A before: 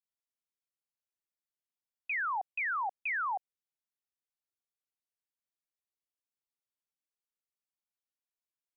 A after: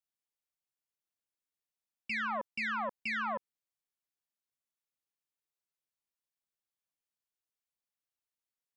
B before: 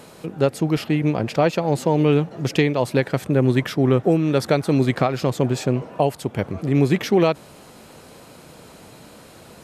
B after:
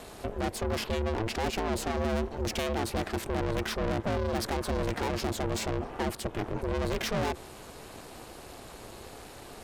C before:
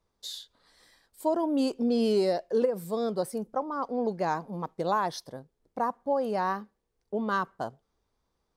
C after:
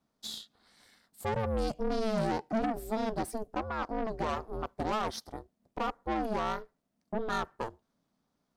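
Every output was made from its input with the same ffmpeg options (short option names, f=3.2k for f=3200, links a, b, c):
-af "aeval=exprs='(tanh(28.2*val(0)+0.55)-tanh(0.55))/28.2':c=same,aeval=exprs='val(0)*sin(2*PI*220*n/s)':c=same,volume=4dB"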